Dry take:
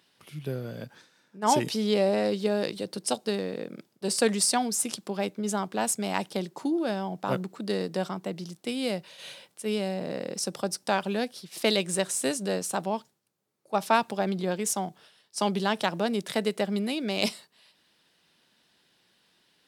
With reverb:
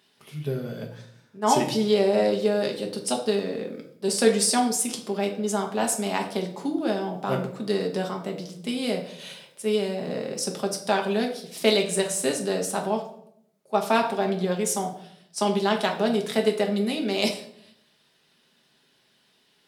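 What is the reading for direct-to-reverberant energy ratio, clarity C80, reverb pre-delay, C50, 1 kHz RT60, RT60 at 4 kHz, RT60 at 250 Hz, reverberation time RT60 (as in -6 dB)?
1.5 dB, 12.5 dB, 5 ms, 9.0 dB, 0.60 s, 0.50 s, 0.90 s, 0.70 s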